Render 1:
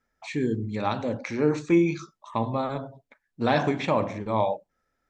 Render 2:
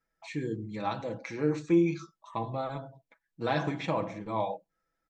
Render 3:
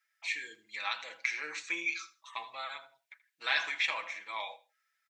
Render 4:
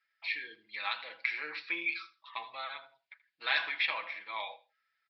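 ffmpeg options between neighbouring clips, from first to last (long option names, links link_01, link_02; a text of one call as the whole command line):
ffmpeg -i in.wav -af "aecho=1:1:6.1:0.65,volume=-7.5dB" out.wav
ffmpeg -i in.wav -af "highpass=frequency=2100:width_type=q:width=1.7,aecho=1:1:80|160:0.126|0.0277,volume=6dB" out.wav
ffmpeg -i in.wav -af "aresample=11025,aresample=44100" out.wav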